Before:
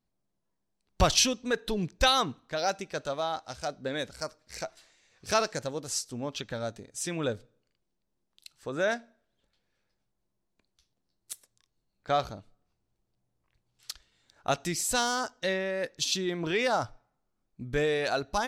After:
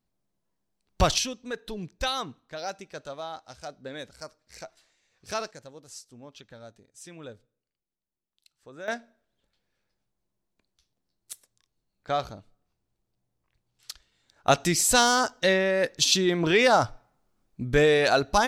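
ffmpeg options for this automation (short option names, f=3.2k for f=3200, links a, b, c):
-af "asetnsamples=n=441:p=0,asendcmd='1.18 volume volume -5.5dB;5.51 volume volume -12dB;8.88 volume volume -0.5dB;14.47 volume volume 7.5dB',volume=1.5dB"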